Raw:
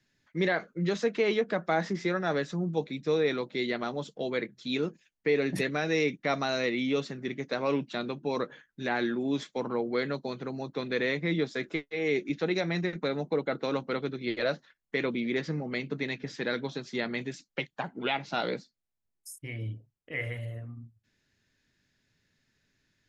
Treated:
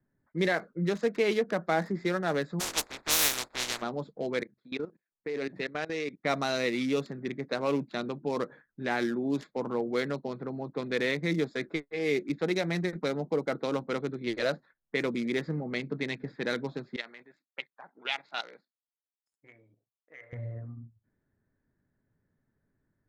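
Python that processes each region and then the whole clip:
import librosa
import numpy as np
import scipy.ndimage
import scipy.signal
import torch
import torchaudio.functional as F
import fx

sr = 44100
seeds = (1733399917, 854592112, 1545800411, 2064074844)

y = fx.spec_flatten(x, sr, power=0.13, at=(2.59, 3.81), fade=0.02)
y = fx.peak_eq(y, sr, hz=160.0, db=-13.0, octaves=0.54, at=(2.59, 3.81), fade=0.02)
y = fx.tube_stage(y, sr, drive_db=17.0, bias=0.25, at=(2.59, 3.81), fade=0.02)
y = fx.chain(y, sr, fx.low_shelf(hz=190.0, db=-10.0),
    fx.level_steps(step_db=16), at=(4.43, 6.25))
y = fx.chain(y, sr, fx.level_steps(step_db=10),
    fx.highpass(hz=1100.0, slope=6),
    fx.tilt_eq(slope=2.0), at=(16.96, 20.33))
y = fx.wiener(y, sr, points=15)
y = fx.env_lowpass(y, sr, base_hz=1300.0, full_db=-25.5)
y = fx.high_shelf(y, sr, hz=5100.0, db=8.0)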